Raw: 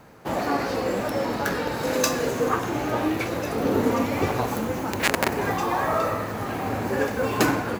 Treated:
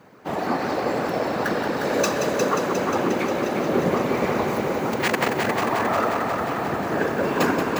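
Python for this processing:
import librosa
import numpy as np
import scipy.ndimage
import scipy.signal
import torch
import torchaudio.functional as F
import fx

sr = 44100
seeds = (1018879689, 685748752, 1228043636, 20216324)

p1 = fx.whisperise(x, sr, seeds[0])
p2 = scipy.signal.sosfilt(scipy.signal.butter(2, 130.0, 'highpass', fs=sr, output='sos'), p1)
p3 = fx.peak_eq(p2, sr, hz=12000.0, db=-7.5, octaves=1.6)
y = p3 + fx.echo_heads(p3, sr, ms=178, heads='first and second', feedback_pct=69, wet_db=-8, dry=0)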